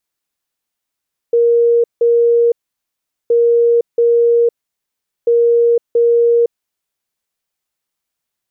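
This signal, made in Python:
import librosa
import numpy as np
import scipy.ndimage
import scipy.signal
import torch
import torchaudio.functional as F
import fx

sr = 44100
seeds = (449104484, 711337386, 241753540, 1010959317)

y = fx.beep_pattern(sr, wave='sine', hz=470.0, on_s=0.51, off_s=0.17, beeps=2, pause_s=0.78, groups=3, level_db=-8.0)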